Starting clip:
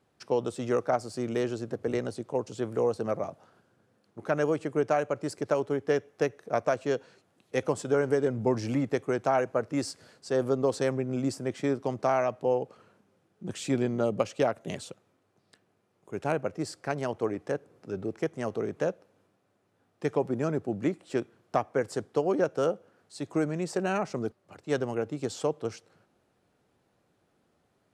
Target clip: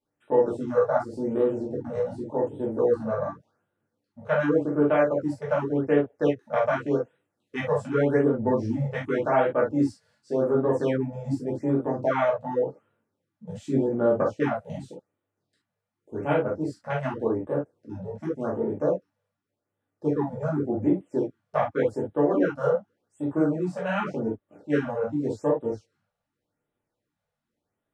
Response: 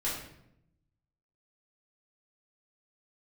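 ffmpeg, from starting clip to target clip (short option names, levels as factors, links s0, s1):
-filter_complex "[0:a]afwtdn=0.0126[s0];[1:a]atrim=start_sample=2205,afade=t=out:st=0.23:d=0.01,atrim=end_sample=10584,atrim=end_sample=3528[s1];[s0][s1]afir=irnorm=-1:irlink=0,afftfilt=real='re*(1-between(b*sr/1024,290*pow(5700/290,0.5+0.5*sin(2*PI*0.87*pts/sr))/1.41,290*pow(5700/290,0.5+0.5*sin(2*PI*0.87*pts/sr))*1.41))':imag='im*(1-between(b*sr/1024,290*pow(5700/290,0.5+0.5*sin(2*PI*0.87*pts/sr))/1.41,290*pow(5700/290,0.5+0.5*sin(2*PI*0.87*pts/sr))*1.41))':win_size=1024:overlap=0.75"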